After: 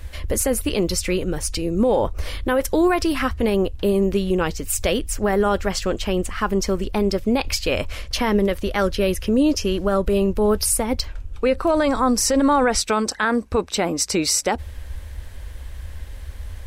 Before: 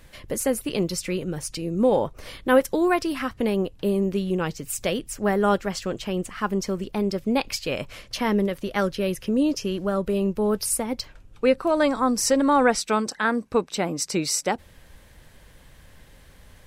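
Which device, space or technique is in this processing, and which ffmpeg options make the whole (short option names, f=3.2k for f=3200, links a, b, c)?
car stereo with a boomy subwoofer: -af "lowshelf=f=100:t=q:w=3:g=9.5,alimiter=limit=-16.5dB:level=0:latency=1:release=38,volume=6.5dB"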